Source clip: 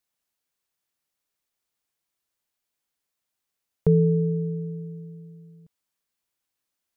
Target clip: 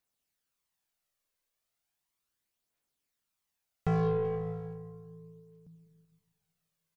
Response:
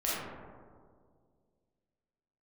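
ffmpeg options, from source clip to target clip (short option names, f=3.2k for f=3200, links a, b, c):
-filter_complex "[0:a]asoftclip=type=tanh:threshold=-24dB,asplit=2[a][b];[1:a]atrim=start_sample=2205,adelay=88[c];[b][c]afir=irnorm=-1:irlink=0,volume=-15dB[d];[a][d]amix=inputs=2:normalize=0,aeval=exprs='0.075*(cos(1*acos(clip(val(0)/0.075,-1,1)))-cos(1*PI/2))+0.00335*(cos(7*acos(clip(val(0)/0.075,-1,1)))-cos(7*PI/2))':c=same,aphaser=in_gain=1:out_gain=1:delay=2:decay=0.4:speed=0.36:type=triangular,asplit=2[e][f];[f]adelay=380,highpass=300,lowpass=3.4k,asoftclip=type=hard:threshold=-31dB,volume=-16dB[g];[e][g]amix=inputs=2:normalize=0"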